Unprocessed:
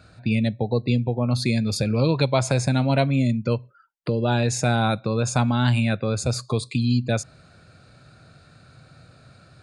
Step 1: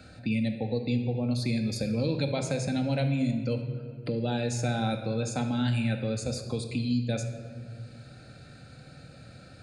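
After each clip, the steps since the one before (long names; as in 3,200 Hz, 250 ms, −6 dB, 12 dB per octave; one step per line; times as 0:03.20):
parametric band 1,100 Hz −13.5 dB 0.45 octaves
convolution reverb RT60 1.5 s, pre-delay 4 ms, DRR 4 dB
multiband upward and downward compressor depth 40%
level −8.5 dB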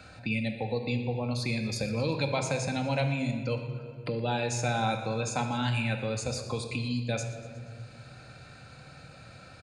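graphic EQ with 15 bands 250 Hz −4 dB, 1,000 Hz +12 dB, 2,500 Hz +6 dB, 6,300 Hz +4 dB
repeating echo 120 ms, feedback 59%, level −17 dB
level −1.5 dB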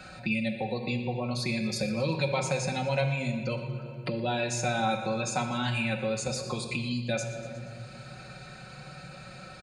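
comb filter 5.4 ms, depth 79%
in parallel at 0 dB: downward compressor, threshold −35 dBFS, peak gain reduction 13.5 dB
on the sum: level −3.5 dB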